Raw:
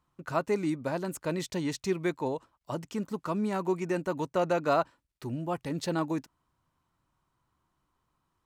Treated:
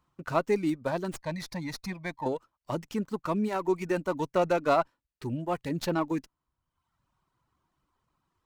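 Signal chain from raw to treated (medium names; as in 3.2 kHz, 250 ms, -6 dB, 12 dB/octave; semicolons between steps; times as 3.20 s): 1.16–2.26 s: static phaser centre 2 kHz, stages 8; reverb removal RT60 0.92 s; sliding maximum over 3 samples; trim +2.5 dB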